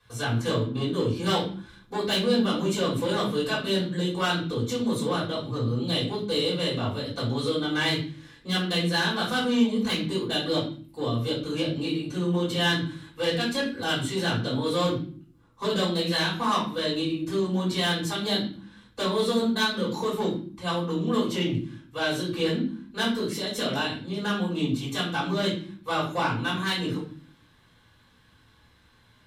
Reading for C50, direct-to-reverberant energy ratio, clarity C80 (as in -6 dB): 5.5 dB, -10.0 dB, 10.5 dB